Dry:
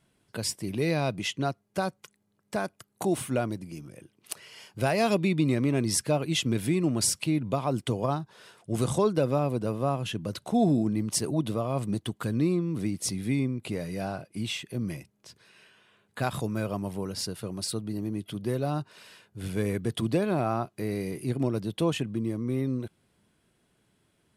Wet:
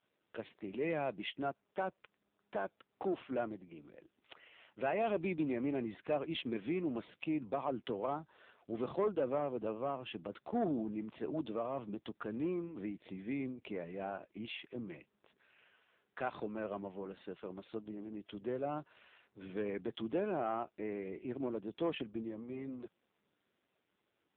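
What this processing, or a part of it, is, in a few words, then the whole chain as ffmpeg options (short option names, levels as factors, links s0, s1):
telephone: -af "highpass=290,lowpass=3300,asoftclip=type=tanh:threshold=0.0944,volume=0.596" -ar 8000 -c:a libopencore_amrnb -b:a 5900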